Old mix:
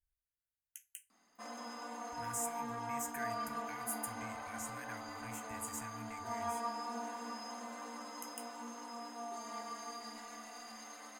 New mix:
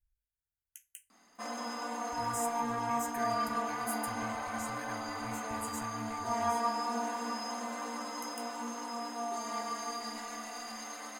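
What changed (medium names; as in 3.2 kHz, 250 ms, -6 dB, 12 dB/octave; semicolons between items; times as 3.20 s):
speech: add bass shelf 110 Hz +10.5 dB; background +7.5 dB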